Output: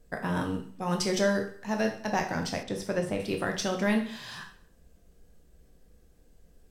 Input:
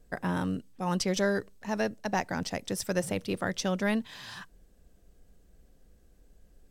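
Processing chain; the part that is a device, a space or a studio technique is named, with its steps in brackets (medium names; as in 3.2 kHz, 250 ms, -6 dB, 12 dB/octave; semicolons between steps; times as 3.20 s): bathroom (reverberation RT60 0.55 s, pre-delay 12 ms, DRR 3 dB); 2.63–3.20 s: low-pass 2.3 kHz 6 dB/octave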